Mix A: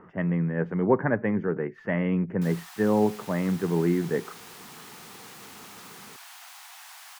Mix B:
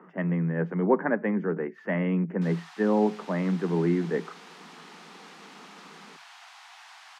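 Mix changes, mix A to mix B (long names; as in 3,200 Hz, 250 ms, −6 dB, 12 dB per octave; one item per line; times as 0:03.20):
background: add low-pass filter 4,800 Hz 12 dB per octave
master: add Chebyshev high-pass filter 160 Hz, order 8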